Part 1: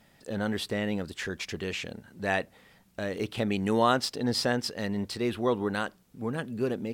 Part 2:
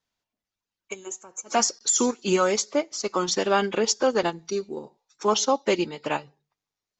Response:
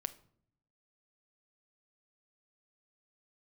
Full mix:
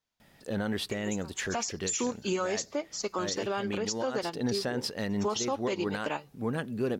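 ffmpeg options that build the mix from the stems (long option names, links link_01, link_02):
-filter_complex "[0:a]alimiter=limit=-20.5dB:level=0:latency=1:release=72,equalizer=frequency=7800:width_type=o:width=0.22:gain=-3,adelay=200,volume=1dB[link_01];[1:a]volume=-3.5dB,asplit=2[link_02][link_03];[link_03]apad=whole_len=314672[link_04];[link_01][link_04]sidechaincompress=threshold=-27dB:ratio=8:attack=10:release=108[link_05];[link_05][link_02]amix=inputs=2:normalize=0,alimiter=limit=-21dB:level=0:latency=1:release=254"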